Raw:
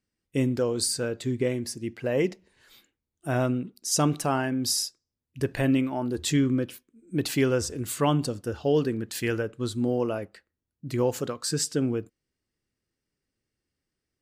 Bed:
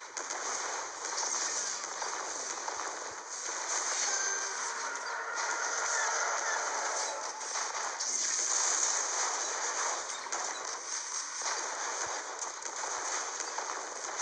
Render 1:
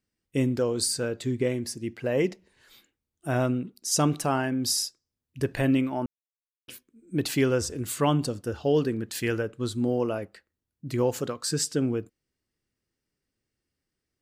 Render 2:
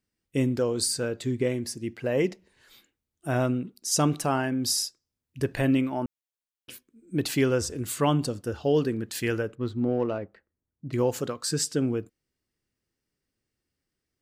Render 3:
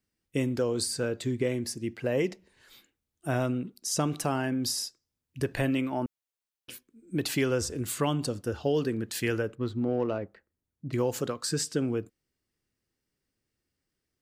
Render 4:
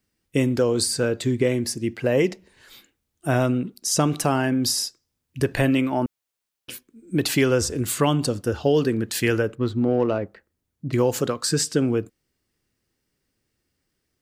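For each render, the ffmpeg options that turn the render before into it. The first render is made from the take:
-filter_complex "[0:a]asplit=3[s0][s1][s2];[s0]atrim=end=6.06,asetpts=PTS-STARTPTS,afade=t=out:st=6.056:d=0.004:c=hsin[s3];[s1]atrim=start=6.06:end=6.68,asetpts=PTS-STARTPTS,volume=0[s4];[s2]atrim=start=6.68,asetpts=PTS-STARTPTS,afade=t=in:d=0.004:c=hsin[s5];[s3][s4][s5]concat=n=3:v=0:a=1"
-filter_complex "[0:a]asettb=1/sr,asplit=3[s0][s1][s2];[s0]atrim=end=9.554[s3];[s1]atrim=start=9.55:end=10.93,asetpts=PTS-STARTPTS,afade=t=in:d=0.004:c=qsin,afade=t=out:st=1.376:d=0.004:c=qsin,adynamicsmooth=sensitivity=2.5:basefreq=1700[s4];[s2]atrim=start=10.926[s5];[s3][s4]acrossfade=d=0.004:c1=hsin:c2=qsin[s6];[s6][s5]acrossfade=d=0.004:c1=qsin:c2=hsin"
-filter_complex "[0:a]acrossover=split=460|2900[s0][s1][s2];[s0]acompressor=threshold=0.0447:ratio=4[s3];[s1]acompressor=threshold=0.0355:ratio=4[s4];[s2]acompressor=threshold=0.0316:ratio=4[s5];[s3][s4][s5]amix=inputs=3:normalize=0"
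-af "volume=2.37"

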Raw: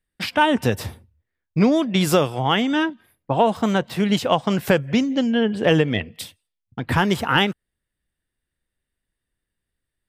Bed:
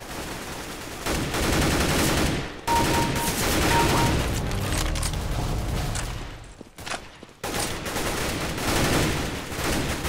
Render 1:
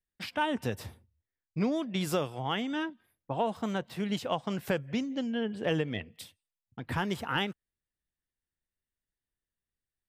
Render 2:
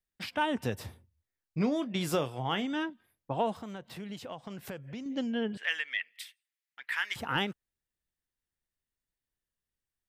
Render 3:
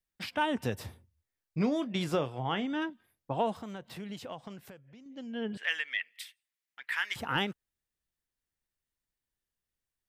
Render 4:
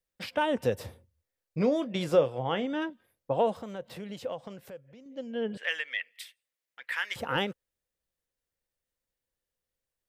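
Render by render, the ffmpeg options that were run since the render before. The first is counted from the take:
-af "volume=0.237"
-filter_complex "[0:a]asettb=1/sr,asplit=3[s0][s1][s2];[s0]atrim=end=0.884[s3];[s1]atrim=start=0.88:end=2.66,asetpts=PTS-STARTPTS,afade=t=in:d=0.004:c=qsin,afade=t=out:st=1.776:d=0.004:c=qsin,asplit=2[s4][s5];[s5]adelay=24,volume=0.237[s6];[s4][s6]amix=inputs=2:normalize=0,atrim=end_sample=78498[s7];[s2]atrim=start=2.656[s8];[s3][s7]acrossfade=d=0.004:c1=hsin:c2=qsin[s9];[s9][s8]acrossfade=d=0.004:c1=qsin:c2=hsin,asettb=1/sr,asplit=3[s10][s11][s12];[s10]atrim=end=3.614[s13];[s11]atrim=start=3.61:end=5.06,asetpts=PTS-STARTPTS,afade=t=in:d=0.004:c=qsin,afade=t=out:st=1.446:d=0.004:c=qsin,acompressor=threshold=0.00794:ratio=2.5:attack=3.2:release=140:knee=1:detection=peak[s14];[s12]atrim=start=5.056[s15];[s13][s14]acrossfade=d=0.004:c1=hsin:c2=qsin[s16];[s16][s15]acrossfade=d=0.004:c1=qsin:c2=hsin,asettb=1/sr,asplit=3[s17][s18][s19];[s17]atrim=end=5.574[s20];[s18]atrim=start=5.57:end=7.16,asetpts=PTS-STARTPTS,afade=t=in:d=0.004:c=qsin,afade=t=out:st=1.586:d=0.004:c=qsin,highpass=f=1900:t=q:w=3[s21];[s19]atrim=start=7.156[s22];[s20][s21]acrossfade=d=0.004:c1=hsin:c2=qsin[s23];[s23][s22]acrossfade=d=0.004:c1=qsin:c2=hsin"
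-filter_complex "[0:a]asettb=1/sr,asplit=3[s0][s1][s2];[s0]atrim=end=2.044[s3];[s1]atrim=start=2.04:end=2.82,asetpts=PTS-STARTPTS,afade=t=in:d=0.004:c=qsin,afade=t=out:st=0.776:d=0.004:c=qsin,aemphasis=mode=reproduction:type=50kf[s4];[s2]atrim=start=2.816[s5];[s3][s4]acrossfade=d=0.004:c1=hsin:c2=qsin[s6];[s6][s5]acrossfade=d=0.004:c1=qsin:c2=hsin,asplit=3[s7][s8][s9];[s7]atrim=end=4.9,asetpts=PTS-STARTPTS,afade=t=out:st=4.43:d=0.47:c=qua:silence=0.223872[s10];[s8]atrim=start=4.9:end=5.06,asetpts=PTS-STARTPTS,volume=0.224[s11];[s9]atrim=start=5.06,asetpts=PTS-STARTPTS,afade=t=in:d=0.47:c=qua:silence=0.223872[s12];[s10][s11][s12]concat=n=3:v=0:a=1"
-af "equalizer=f=520:w=3.4:g=12"

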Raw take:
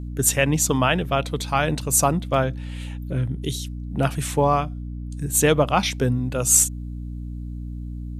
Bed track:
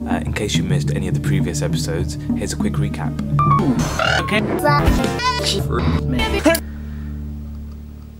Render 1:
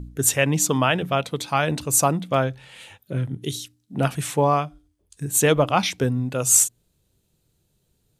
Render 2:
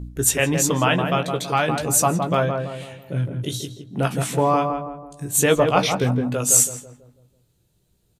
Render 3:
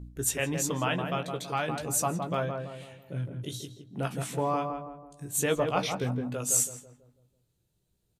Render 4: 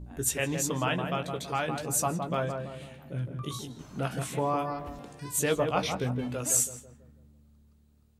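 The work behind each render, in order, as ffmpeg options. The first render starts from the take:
-af "bandreject=f=60:t=h:w=4,bandreject=f=120:t=h:w=4,bandreject=f=180:t=h:w=4,bandreject=f=240:t=h:w=4,bandreject=f=300:t=h:w=4"
-filter_complex "[0:a]asplit=2[s0][s1];[s1]adelay=17,volume=0.447[s2];[s0][s2]amix=inputs=2:normalize=0,asplit=2[s3][s4];[s4]adelay=164,lowpass=f=1100:p=1,volume=0.631,asplit=2[s5][s6];[s6]adelay=164,lowpass=f=1100:p=1,volume=0.48,asplit=2[s7][s8];[s8]adelay=164,lowpass=f=1100:p=1,volume=0.48,asplit=2[s9][s10];[s10]adelay=164,lowpass=f=1100:p=1,volume=0.48,asplit=2[s11][s12];[s12]adelay=164,lowpass=f=1100:p=1,volume=0.48,asplit=2[s13][s14];[s14]adelay=164,lowpass=f=1100:p=1,volume=0.48[s15];[s5][s7][s9][s11][s13][s15]amix=inputs=6:normalize=0[s16];[s3][s16]amix=inputs=2:normalize=0"
-af "volume=0.316"
-filter_complex "[1:a]volume=0.0335[s0];[0:a][s0]amix=inputs=2:normalize=0"

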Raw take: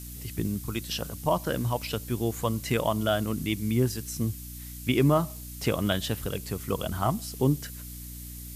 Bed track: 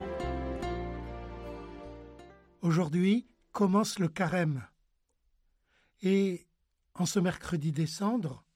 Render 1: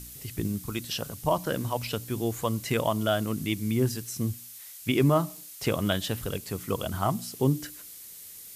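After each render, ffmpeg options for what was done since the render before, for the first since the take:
-af "bandreject=f=60:t=h:w=4,bandreject=f=120:t=h:w=4,bandreject=f=180:t=h:w=4,bandreject=f=240:t=h:w=4,bandreject=f=300:t=h:w=4"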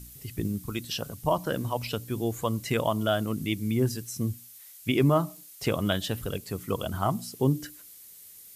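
-af "afftdn=nr=6:nf=-45"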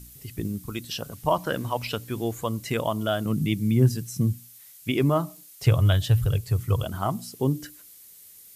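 -filter_complex "[0:a]asettb=1/sr,asplit=3[s0][s1][s2];[s0]atrim=end=1.124[s3];[s1]atrim=start=1.12:end=2.34,asetpts=PTS-STARTPTS,afade=t=in:d=0.004:c=qsin,afade=t=out:st=1.216:d=0.004:c=qsin,equalizer=f=1700:w=0.49:g=5[s4];[s2]atrim=start=2.336[s5];[s3][s4]acrossfade=d=0.004:c1=hsin:c2=qsin[s6];[s6][s5]acrossfade=d=0.004:c1=qsin:c2=hsin,asettb=1/sr,asplit=3[s7][s8][s9];[s7]atrim=end=3.254[s10];[s8]atrim=start=3.25:end=4.84,asetpts=PTS-STARTPTS,afade=t=in:d=0.004:c=qsin,afade=t=out:st=1.586:d=0.004:c=qsin,equalizer=f=150:w=1.5:g=12[s11];[s9]atrim=start=4.836[s12];[s10][s11]acrossfade=d=0.004:c1=hsin:c2=qsin[s13];[s13][s12]acrossfade=d=0.004:c1=qsin:c2=hsin,asettb=1/sr,asplit=3[s14][s15][s16];[s14]atrim=end=5.664[s17];[s15]atrim=start=5.66:end=6.84,asetpts=PTS-STARTPTS,afade=t=in:d=0.004:c=qsin,afade=t=out:st=1.176:d=0.004:c=qsin,lowshelf=f=160:t=q:w=3:g=9.5[s18];[s16]atrim=start=6.836[s19];[s17][s18]acrossfade=d=0.004:c1=hsin:c2=qsin[s20];[s20][s19]acrossfade=d=0.004:c1=qsin:c2=hsin"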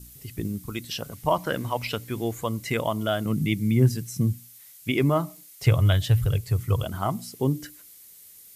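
-af "adynamicequalizer=threshold=0.00178:dfrequency=2100:dqfactor=6.3:tfrequency=2100:tqfactor=6.3:attack=5:release=100:ratio=0.375:range=3.5:mode=boostabove:tftype=bell"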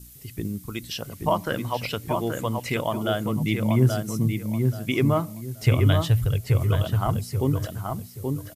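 -filter_complex "[0:a]asplit=2[s0][s1];[s1]adelay=829,lowpass=f=2200:p=1,volume=0.631,asplit=2[s2][s3];[s3]adelay=829,lowpass=f=2200:p=1,volume=0.27,asplit=2[s4][s5];[s5]adelay=829,lowpass=f=2200:p=1,volume=0.27,asplit=2[s6][s7];[s7]adelay=829,lowpass=f=2200:p=1,volume=0.27[s8];[s0][s2][s4][s6][s8]amix=inputs=5:normalize=0"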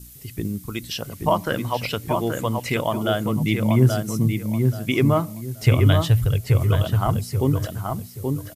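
-af "volume=1.41"

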